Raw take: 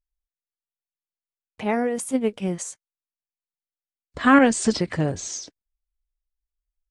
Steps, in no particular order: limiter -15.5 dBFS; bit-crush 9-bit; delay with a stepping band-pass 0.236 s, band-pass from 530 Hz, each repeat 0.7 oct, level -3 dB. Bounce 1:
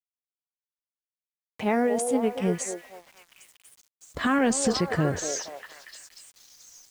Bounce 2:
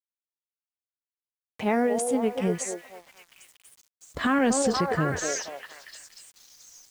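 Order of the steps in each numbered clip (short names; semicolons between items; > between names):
limiter > delay with a stepping band-pass > bit-crush; delay with a stepping band-pass > limiter > bit-crush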